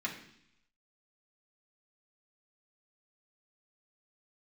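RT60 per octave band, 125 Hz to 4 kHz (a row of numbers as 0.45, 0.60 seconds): 0.90, 0.85, 0.70, 0.70, 0.85, 0.90 seconds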